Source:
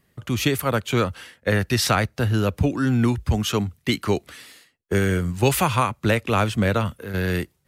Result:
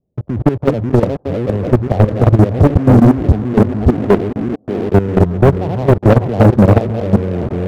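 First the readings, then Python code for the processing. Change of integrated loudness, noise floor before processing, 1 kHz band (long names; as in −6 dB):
+9.5 dB, −67 dBFS, +5.0 dB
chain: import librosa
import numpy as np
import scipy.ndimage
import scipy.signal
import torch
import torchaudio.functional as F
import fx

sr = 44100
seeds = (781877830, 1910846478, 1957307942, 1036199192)

p1 = fx.reverse_delay(x, sr, ms=299, wet_db=-2.5)
p2 = scipy.signal.sosfilt(scipy.signal.butter(6, 720.0, 'lowpass', fs=sr, output='sos'), p1)
p3 = p2 + fx.echo_thinned(p2, sr, ms=605, feedback_pct=57, hz=190.0, wet_db=-11, dry=0)
p4 = fx.level_steps(p3, sr, step_db=19)
p5 = fx.leveller(p4, sr, passes=3)
p6 = 10.0 ** (-25.5 / 20.0) * np.tanh(p5 / 10.0 ** (-25.5 / 20.0))
p7 = p5 + F.gain(torch.from_numpy(p6), -5.0).numpy()
y = F.gain(torch.from_numpy(p7), 6.5).numpy()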